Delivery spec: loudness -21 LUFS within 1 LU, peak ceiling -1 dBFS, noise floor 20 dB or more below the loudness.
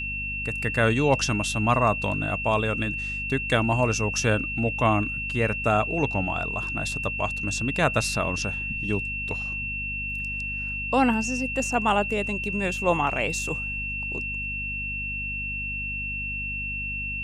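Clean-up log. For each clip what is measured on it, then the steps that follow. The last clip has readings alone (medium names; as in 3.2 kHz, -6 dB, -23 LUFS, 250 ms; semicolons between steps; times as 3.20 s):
hum 50 Hz; highest harmonic 250 Hz; hum level -34 dBFS; steady tone 2.7 kHz; tone level -29 dBFS; loudness -25.5 LUFS; peak level -8.0 dBFS; loudness target -21.0 LUFS
-> de-hum 50 Hz, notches 5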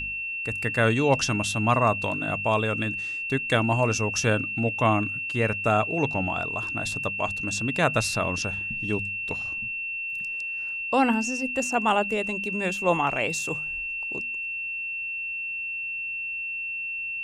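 hum not found; steady tone 2.7 kHz; tone level -29 dBFS
-> band-stop 2.7 kHz, Q 30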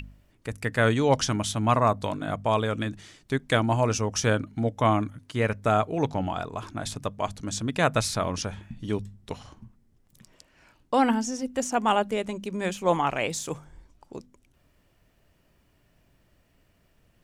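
steady tone not found; loudness -26.5 LUFS; peak level -8.5 dBFS; loudness target -21.0 LUFS
-> trim +5.5 dB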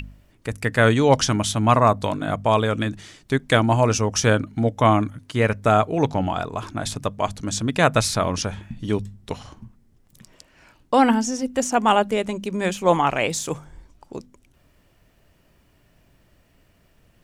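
loudness -21.0 LUFS; peak level -3.0 dBFS; noise floor -60 dBFS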